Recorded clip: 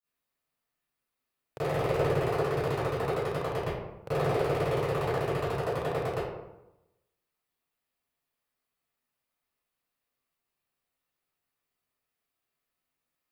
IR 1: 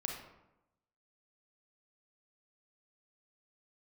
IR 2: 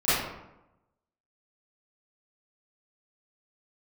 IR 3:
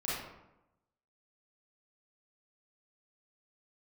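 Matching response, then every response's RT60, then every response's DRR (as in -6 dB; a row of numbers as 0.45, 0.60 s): 2; 0.90, 0.90, 0.90 s; 0.5, -17.0, -9.0 dB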